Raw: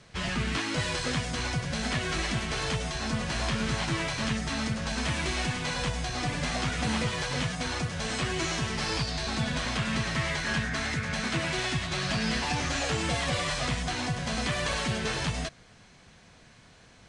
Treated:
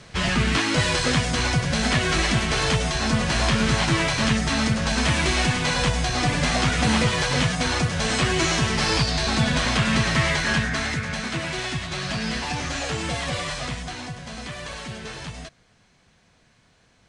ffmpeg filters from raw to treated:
ffmpeg -i in.wav -af "volume=8.5dB,afade=type=out:start_time=10.24:duration=1.02:silence=0.446684,afade=type=out:start_time=13.38:duration=0.84:silence=0.473151" out.wav

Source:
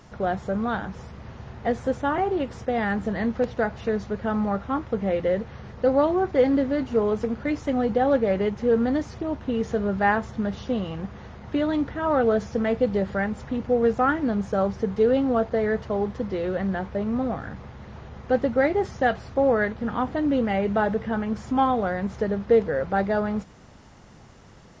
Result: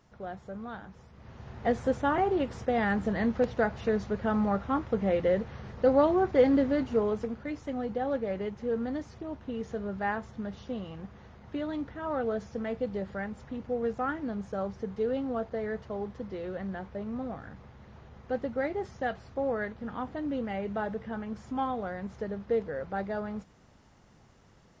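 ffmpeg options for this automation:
ffmpeg -i in.wav -af "volume=-2.5dB,afade=type=in:start_time=1.11:duration=0.57:silence=0.266073,afade=type=out:start_time=6.72:duration=0.72:silence=0.421697" out.wav

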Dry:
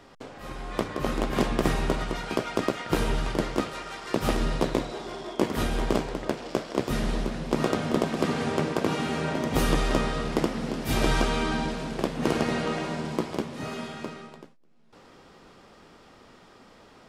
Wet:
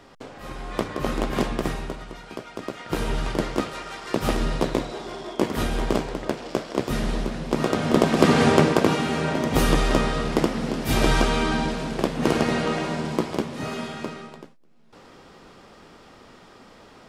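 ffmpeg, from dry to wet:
ffmpeg -i in.wav -af "volume=21dB,afade=type=out:start_time=1.28:duration=0.68:silence=0.316228,afade=type=in:start_time=2.6:duration=0.66:silence=0.316228,afade=type=in:start_time=7.69:duration=0.76:silence=0.354813,afade=type=out:start_time=8.45:duration=0.57:silence=0.446684" out.wav

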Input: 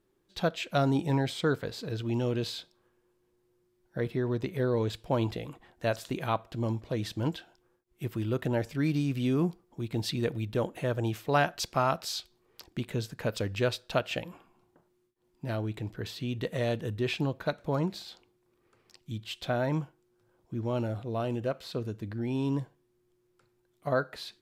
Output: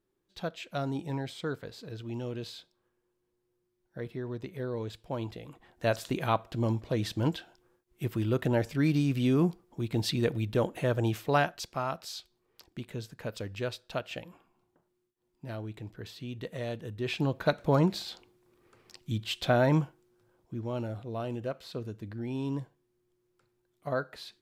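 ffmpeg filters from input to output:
ffmpeg -i in.wav -af "volume=13dB,afade=type=in:start_time=5.42:duration=0.52:silence=0.354813,afade=type=out:start_time=11.21:duration=0.42:silence=0.398107,afade=type=in:start_time=16.95:duration=0.61:silence=0.281838,afade=type=out:start_time=19.78:duration=0.85:silence=0.375837" out.wav

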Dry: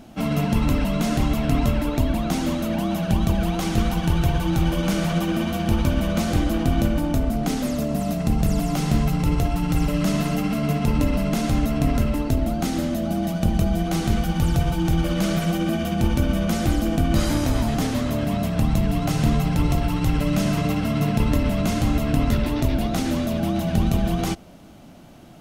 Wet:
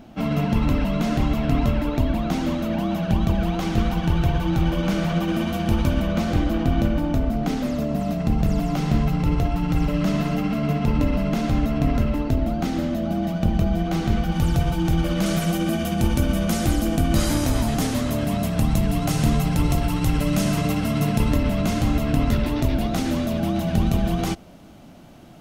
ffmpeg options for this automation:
ffmpeg -i in.wav -af "asetnsamples=nb_out_samples=441:pad=0,asendcmd='5.28 equalizer g -3.5;6.02 equalizer g -12;14.32 equalizer g -2.5;15.26 equalizer g 5;21.33 equalizer g -2',equalizer=frequency=10000:width_type=o:width=1.4:gain=-10.5" out.wav

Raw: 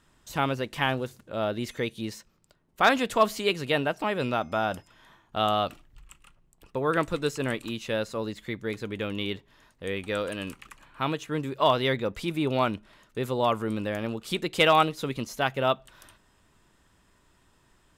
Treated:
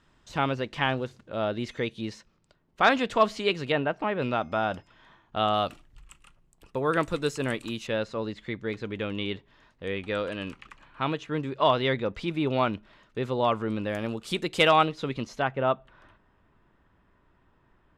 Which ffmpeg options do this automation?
ffmpeg -i in.wav -af "asetnsamples=nb_out_samples=441:pad=0,asendcmd='3.72 lowpass f 2400;4.22 lowpass f 4200;5.54 lowpass f 11000;7.87 lowpass f 4400;13.9 lowpass f 10000;14.71 lowpass f 4600;15.42 lowpass f 1900',lowpass=5100" out.wav

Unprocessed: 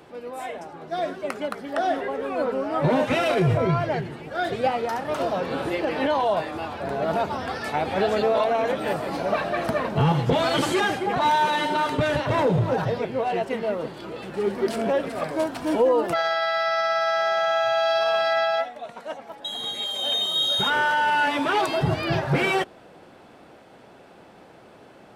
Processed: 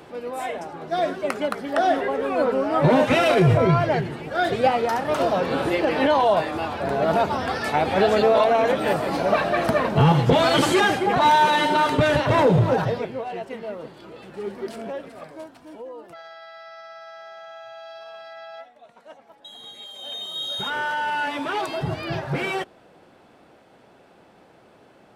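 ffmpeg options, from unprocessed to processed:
ffmpeg -i in.wav -af "volume=18.5dB,afade=type=out:start_time=12.66:duration=0.59:silence=0.298538,afade=type=out:start_time=14.5:duration=1.21:silence=0.251189,afade=type=in:start_time=18.37:duration=0.73:silence=0.421697,afade=type=in:start_time=19.95:duration=0.97:silence=0.446684" out.wav

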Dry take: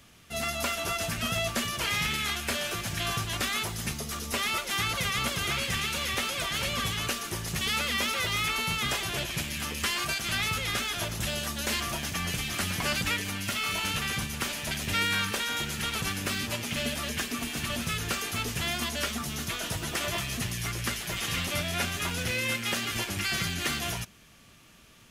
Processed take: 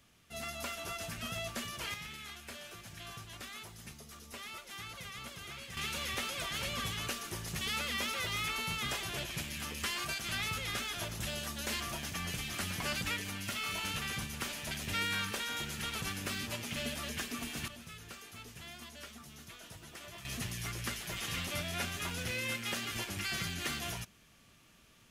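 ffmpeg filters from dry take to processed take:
ffmpeg -i in.wav -af "asetnsamples=nb_out_samples=441:pad=0,asendcmd='1.94 volume volume -16.5dB;5.77 volume volume -7dB;17.68 volume volume -18dB;20.25 volume volume -7dB',volume=-10dB" out.wav

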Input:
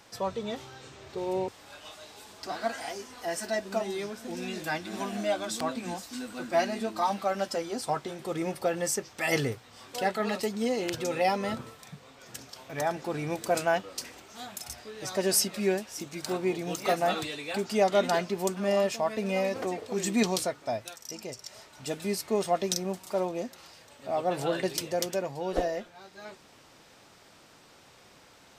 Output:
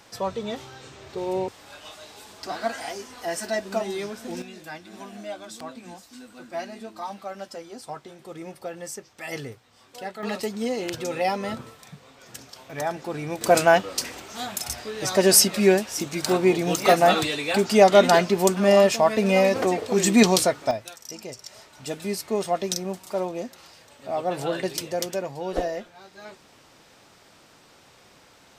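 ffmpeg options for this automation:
ffmpeg -i in.wav -af "asetnsamples=nb_out_samples=441:pad=0,asendcmd='4.42 volume volume -6.5dB;10.23 volume volume 1.5dB;13.41 volume volume 9.5dB;20.71 volume volume 2dB',volume=3.5dB" out.wav

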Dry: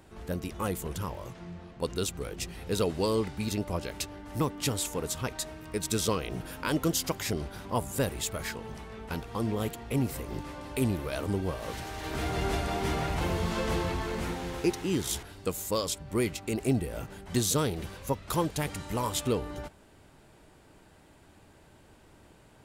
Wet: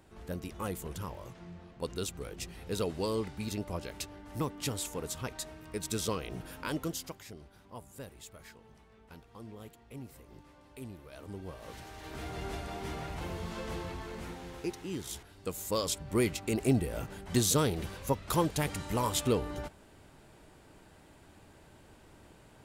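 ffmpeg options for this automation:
ffmpeg -i in.wav -af "volume=12dB,afade=type=out:start_time=6.61:duration=0.64:silence=0.251189,afade=type=in:start_time=11.08:duration=0.69:silence=0.398107,afade=type=in:start_time=15.31:duration=0.67:silence=0.354813" out.wav

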